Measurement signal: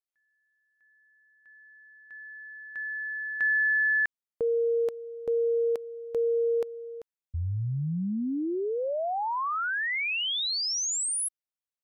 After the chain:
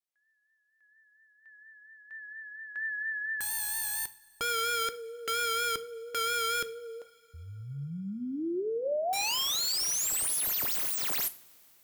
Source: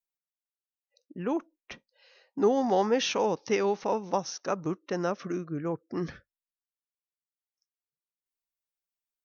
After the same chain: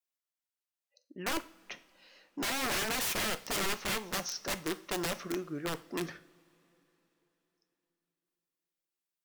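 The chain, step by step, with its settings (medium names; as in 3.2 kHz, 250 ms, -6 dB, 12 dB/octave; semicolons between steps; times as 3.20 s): high-pass 410 Hz 6 dB/octave; integer overflow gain 27.5 dB; vibrato 4.3 Hz 48 cents; two-slope reverb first 0.38 s, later 3.9 s, from -22 dB, DRR 10.5 dB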